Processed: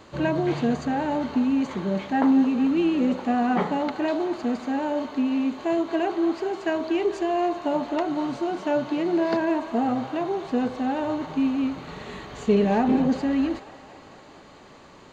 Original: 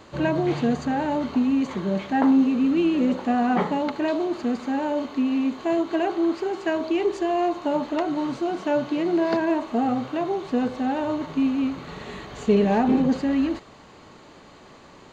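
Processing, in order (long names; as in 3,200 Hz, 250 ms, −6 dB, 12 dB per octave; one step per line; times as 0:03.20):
delay with a band-pass on its return 223 ms, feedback 68%, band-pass 1,200 Hz, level −13 dB
level −1 dB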